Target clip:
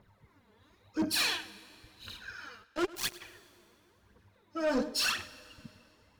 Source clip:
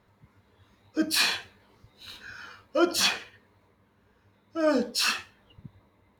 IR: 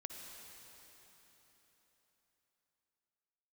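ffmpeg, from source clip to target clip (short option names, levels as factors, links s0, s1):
-filter_complex "[0:a]asplit=3[s0][s1][s2];[s0]afade=t=out:st=2.63:d=0.02[s3];[s1]acrusher=bits=2:mix=0:aa=0.5,afade=t=in:st=2.63:d=0.02,afade=t=out:st=3.2:d=0.02[s4];[s2]afade=t=in:st=3.2:d=0.02[s5];[s3][s4][s5]amix=inputs=3:normalize=0,aphaser=in_gain=1:out_gain=1:delay=4.8:decay=0.62:speed=0.96:type=triangular,asoftclip=type=tanh:threshold=0.0891,asplit=2[s6][s7];[1:a]atrim=start_sample=2205,asetrate=70560,aresample=44100,adelay=104[s8];[s7][s8]afir=irnorm=-1:irlink=0,volume=0.335[s9];[s6][s9]amix=inputs=2:normalize=0,volume=0.668"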